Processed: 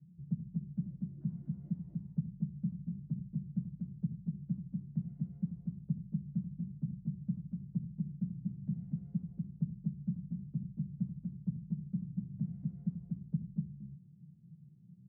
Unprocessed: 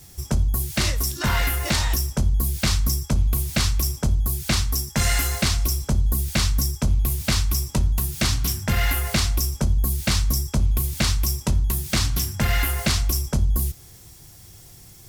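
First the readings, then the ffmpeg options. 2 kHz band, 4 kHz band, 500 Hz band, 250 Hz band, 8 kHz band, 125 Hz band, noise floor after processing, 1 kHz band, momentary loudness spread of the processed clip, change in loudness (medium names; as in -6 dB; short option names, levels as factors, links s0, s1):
under -40 dB, under -40 dB, under -35 dB, -7.5 dB, under -40 dB, -14.5 dB, -58 dBFS, under -40 dB, 5 LU, -17.0 dB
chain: -af "acompressor=threshold=0.0562:ratio=6,asuperpass=centerf=170:order=4:qfactor=3.3,aecho=1:1:84.55|242:0.316|0.794,volume=1.19"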